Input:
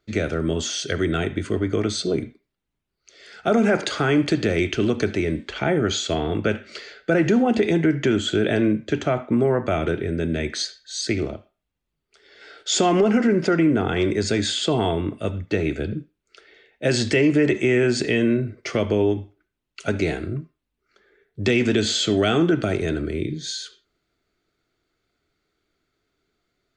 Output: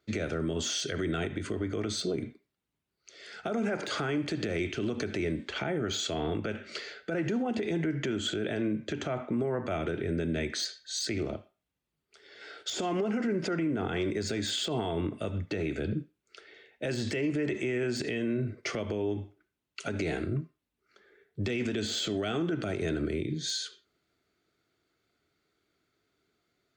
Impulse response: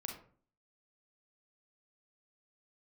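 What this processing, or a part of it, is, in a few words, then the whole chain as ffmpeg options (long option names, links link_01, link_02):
podcast mastering chain: -af "highpass=76,deesser=0.6,acompressor=threshold=-21dB:ratio=6,alimiter=limit=-20.5dB:level=0:latency=1:release=86,volume=-1.5dB" -ar 48000 -c:a libmp3lame -b:a 96k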